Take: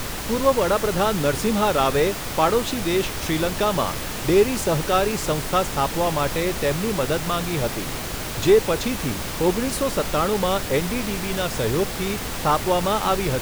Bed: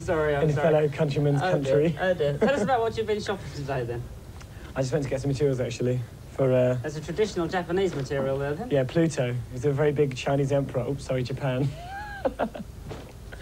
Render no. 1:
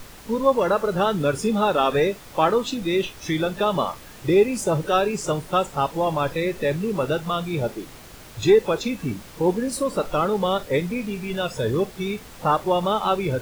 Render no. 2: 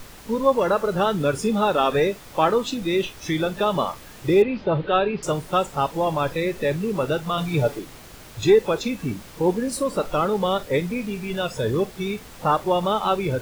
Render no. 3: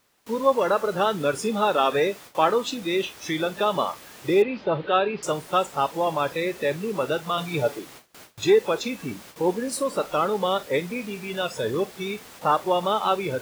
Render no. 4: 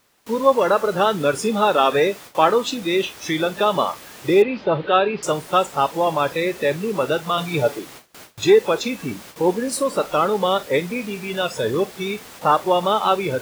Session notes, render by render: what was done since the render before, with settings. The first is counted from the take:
noise print and reduce 14 dB
4.42–5.23 s: steep low-pass 4.1 kHz 48 dB/octave; 7.37–7.79 s: comb 6.9 ms, depth 92%
high-pass 340 Hz 6 dB/octave; gate with hold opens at -34 dBFS
trim +4.5 dB

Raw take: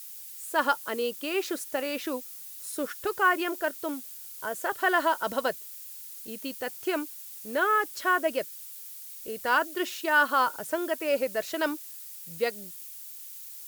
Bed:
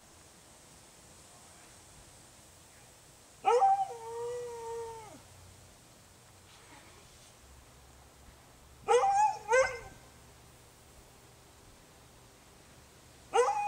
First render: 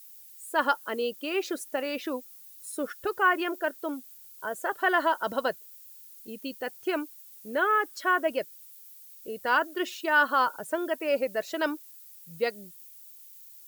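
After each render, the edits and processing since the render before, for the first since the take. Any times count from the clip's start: noise reduction 10 dB, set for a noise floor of -43 dBFS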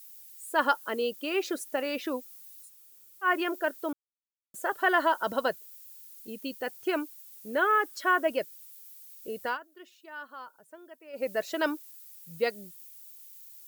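2.65–3.26 s: room tone, crossfade 0.10 s; 3.93–4.54 s: mute; 9.43–11.28 s: dip -20 dB, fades 0.15 s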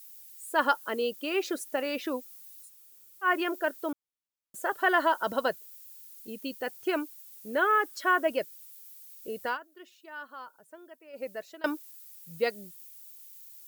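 10.84–11.64 s: fade out, to -22.5 dB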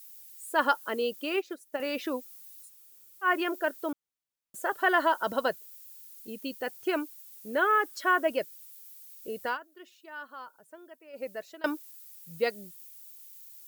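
1.36–1.80 s: upward expansion 2.5:1, over -35 dBFS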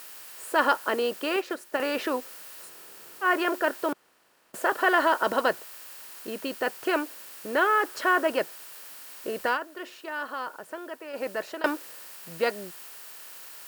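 spectral levelling over time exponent 0.6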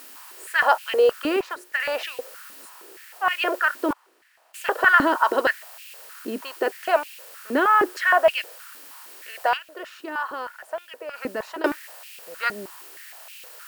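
step-sequenced high-pass 6.4 Hz 260–2600 Hz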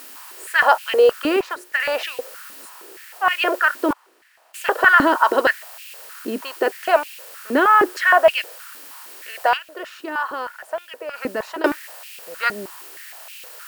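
trim +4 dB; peak limiter -1 dBFS, peak gain reduction 2 dB

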